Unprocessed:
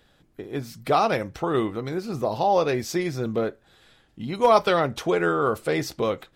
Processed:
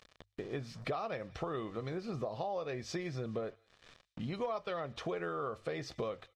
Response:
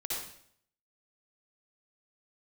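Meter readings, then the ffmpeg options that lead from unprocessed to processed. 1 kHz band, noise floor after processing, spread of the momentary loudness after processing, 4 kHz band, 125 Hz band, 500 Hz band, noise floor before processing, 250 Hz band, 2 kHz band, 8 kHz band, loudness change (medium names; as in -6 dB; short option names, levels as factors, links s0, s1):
-17.5 dB, -76 dBFS, 5 LU, -14.0 dB, -10.5 dB, -15.0 dB, -62 dBFS, -14.0 dB, -15.0 dB, -15.5 dB, -15.5 dB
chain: -filter_complex "[0:a]acrusher=bits=7:mix=0:aa=0.5,lowpass=4700,aecho=1:1:1.7:0.33,acompressor=mode=upward:threshold=0.0112:ratio=2.5,asplit=2[s0][s1];[s1]aderivative[s2];[1:a]atrim=start_sample=2205,atrim=end_sample=3528,adelay=122[s3];[s2][s3]afir=irnorm=-1:irlink=0,volume=0.0944[s4];[s0][s4]amix=inputs=2:normalize=0,acompressor=threshold=0.0251:ratio=8,bandreject=f=50:t=h:w=6,bandreject=f=100:t=h:w=6,volume=0.708"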